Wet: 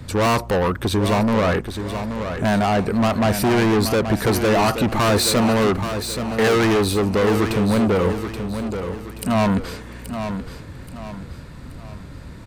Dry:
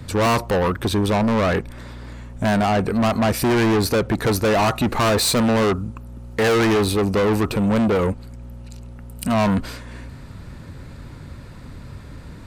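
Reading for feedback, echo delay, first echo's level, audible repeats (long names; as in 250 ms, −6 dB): 40%, 828 ms, −8.5 dB, 4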